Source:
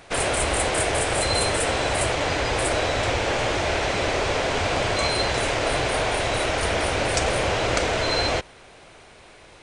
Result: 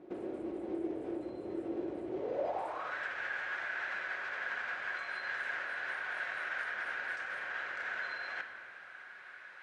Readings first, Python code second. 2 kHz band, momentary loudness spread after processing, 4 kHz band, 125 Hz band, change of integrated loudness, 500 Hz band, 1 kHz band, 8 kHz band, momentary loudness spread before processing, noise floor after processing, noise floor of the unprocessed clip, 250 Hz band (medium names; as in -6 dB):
-9.5 dB, 6 LU, -26.0 dB, under -30 dB, -15.0 dB, -17.5 dB, -17.5 dB, under -35 dB, 1 LU, -52 dBFS, -48 dBFS, -11.0 dB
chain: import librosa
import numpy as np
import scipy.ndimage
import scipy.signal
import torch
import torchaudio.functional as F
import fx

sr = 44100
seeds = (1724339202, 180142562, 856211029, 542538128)

y = fx.peak_eq(x, sr, hz=220.0, db=4.5, octaves=0.48)
y = fx.over_compress(y, sr, threshold_db=-29.0, ratio=-1.0)
y = fx.filter_sweep_bandpass(y, sr, from_hz=330.0, to_hz=1600.0, start_s=2.11, end_s=2.97, q=7.3)
y = fx.room_shoebox(y, sr, seeds[0], volume_m3=1500.0, walls='mixed', distance_m=1.0)
y = y * librosa.db_to_amplitude(2.5)